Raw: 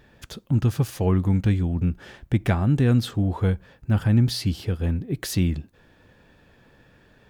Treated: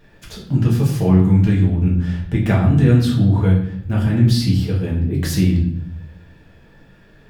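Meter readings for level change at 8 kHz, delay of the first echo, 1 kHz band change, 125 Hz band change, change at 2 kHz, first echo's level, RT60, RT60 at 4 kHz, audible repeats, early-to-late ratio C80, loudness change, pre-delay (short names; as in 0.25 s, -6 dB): +3.5 dB, none, +4.0 dB, +7.0 dB, +4.5 dB, none, 0.65 s, 0.55 s, none, 9.0 dB, +7.0 dB, 4 ms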